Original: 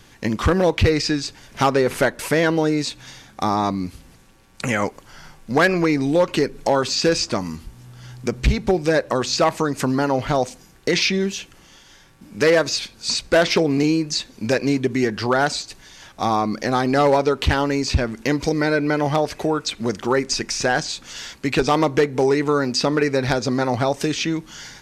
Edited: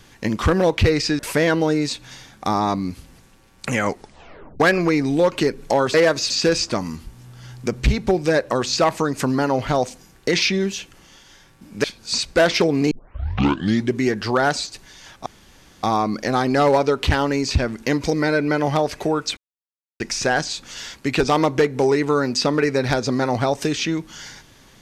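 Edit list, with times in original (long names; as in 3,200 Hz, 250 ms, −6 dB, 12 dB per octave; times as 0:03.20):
0:01.19–0:02.15: remove
0:04.85: tape stop 0.71 s
0:12.44–0:12.80: move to 0:06.90
0:13.87: tape start 1.03 s
0:16.22: splice in room tone 0.57 s
0:19.76–0:20.39: silence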